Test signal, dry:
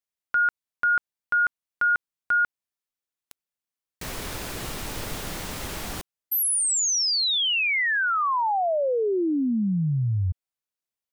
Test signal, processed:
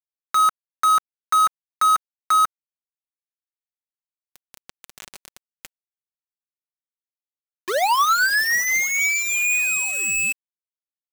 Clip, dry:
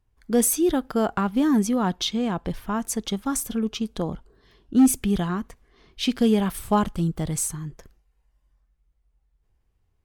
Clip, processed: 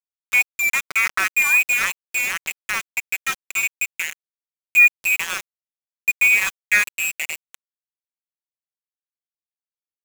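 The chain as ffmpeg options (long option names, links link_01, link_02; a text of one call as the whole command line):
ffmpeg -i in.wav -filter_complex "[0:a]adynamicequalizer=threshold=0.0178:dfrequency=1500:dqfactor=1.4:tfrequency=1500:tqfactor=1.4:attack=5:release=100:ratio=0.438:range=2:mode=boostabove:tftype=bell,lowpass=frequency=2300:width_type=q:width=0.5098,lowpass=frequency=2300:width_type=q:width=0.6013,lowpass=frequency=2300:width_type=q:width=0.9,lowpass=frequency=2300:width_type=q:width=2.563,afreqshift=-2700,asplit=2[link_01][link_02];[link_02]acompressor=threshold=-30dB:ratio=6:attack=1.4:release=371:knee=6:detection=peak,volume=0dB[link_03];[link_01][link_03]amix=inputs=2:normalize=0,aeval=exprs='val(0)*gte(abs(val(0)),0.106)':channel_layout=same,aecho=1:1:5.3:0.36" out.wav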